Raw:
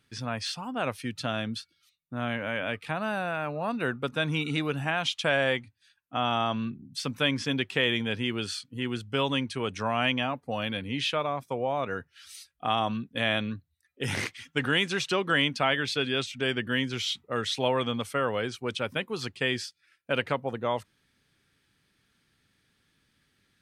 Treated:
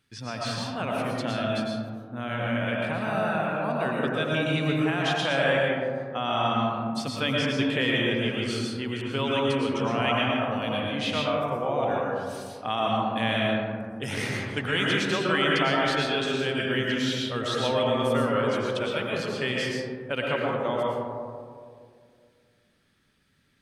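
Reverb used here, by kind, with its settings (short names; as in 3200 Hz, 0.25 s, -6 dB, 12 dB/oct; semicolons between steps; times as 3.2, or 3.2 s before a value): digital reverb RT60 2.2 s, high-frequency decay 0.25×, pre-delay 75 ms, DRR -3.5 dB; gain -2.5 dB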